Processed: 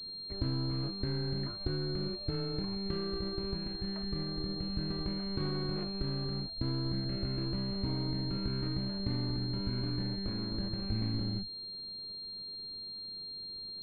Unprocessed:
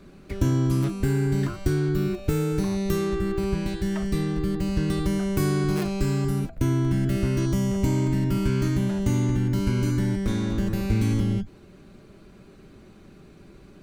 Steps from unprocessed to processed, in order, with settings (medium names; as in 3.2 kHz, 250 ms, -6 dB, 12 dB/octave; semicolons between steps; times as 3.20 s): partial rectifier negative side -7 dB; class-D stage that switches slowly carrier 4.2 kHz; trim -9 dB